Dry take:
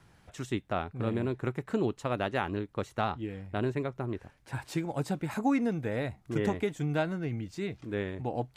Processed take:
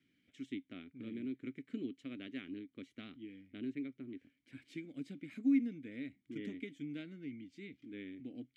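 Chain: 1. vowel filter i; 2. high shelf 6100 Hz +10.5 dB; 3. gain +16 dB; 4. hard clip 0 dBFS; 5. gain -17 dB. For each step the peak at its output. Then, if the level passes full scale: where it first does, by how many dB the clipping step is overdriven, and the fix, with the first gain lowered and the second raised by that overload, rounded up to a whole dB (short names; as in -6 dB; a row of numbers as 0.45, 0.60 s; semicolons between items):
-21.5, -21.5, -5.5, -5.5, -22.5 dBFS; no overload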